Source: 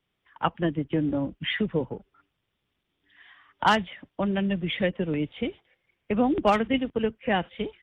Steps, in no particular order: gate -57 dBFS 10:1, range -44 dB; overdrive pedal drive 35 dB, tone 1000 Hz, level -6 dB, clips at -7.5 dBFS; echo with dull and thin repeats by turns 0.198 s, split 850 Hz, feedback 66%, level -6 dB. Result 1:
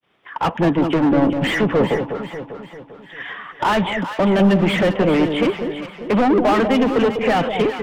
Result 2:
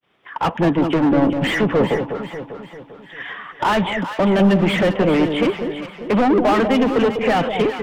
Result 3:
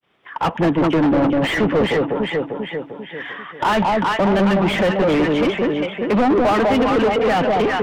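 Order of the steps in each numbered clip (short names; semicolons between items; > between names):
overdrive pedal > gate > echo with dull and thin repeats by turns; overdrive pedal > echo with dull and thin repeats by turns > gate; echo with dull and thin repeats by turns > overdrive pedal > gate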